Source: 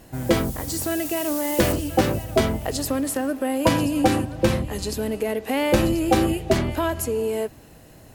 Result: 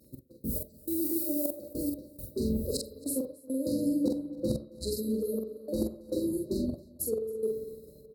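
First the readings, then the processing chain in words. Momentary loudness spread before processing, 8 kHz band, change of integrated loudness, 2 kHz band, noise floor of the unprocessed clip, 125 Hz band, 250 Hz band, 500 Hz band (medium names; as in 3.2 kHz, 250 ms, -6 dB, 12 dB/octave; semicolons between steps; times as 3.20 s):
6 LU, -9.5 dB, -9.5 dB, under -40 dB, -48 dBFS, -14.5 dB, -8.0 dB, -10.5 dB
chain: FFT band-reject 620–3800 Hz; trance gate "x..x..xxx" 103 bpm -24 dB; fifteen-band graphic EQ 100 Hz -5 dB, 250 Hz +4 dB, 6.3 kHz -10 dB, 16 kHz +6 dB; reverse; compression 6:1, threshold -29 dBFS, peak gain reduction 15.5 dB; reverse; high-pass 54 Hz; peaking EQ 2.3 kHz +5.5 dB 0.5 oct; doubling 45 ms -3 dB; spring tank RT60 2.3 s, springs 43/59 ms, chirp 50 ms, DRR 6 dB; upward compressor, threshold -30 dBFS; spectral noise reduction 6 dB; expander -34 dBFS; delay 272 ms -23.5 dB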